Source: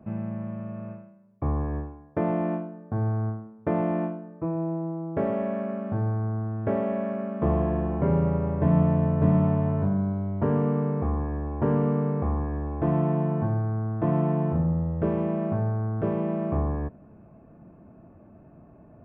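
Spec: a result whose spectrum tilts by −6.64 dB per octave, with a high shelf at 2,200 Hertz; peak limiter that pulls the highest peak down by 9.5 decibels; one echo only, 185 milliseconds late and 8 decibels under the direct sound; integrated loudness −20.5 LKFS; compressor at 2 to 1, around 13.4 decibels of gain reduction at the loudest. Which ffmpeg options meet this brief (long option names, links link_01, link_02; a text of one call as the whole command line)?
ffmpeg -i in.wav -af "highshelf=frequency=2200:gain=-5,acompressor=threshold=-42dB:ratio=2,alimiter=level_in=7.5dB:limit=-24dB:level=0:latency=1,volume=-7.5dB,aecho=1:1:185:0.398,volume=19dB" out.wav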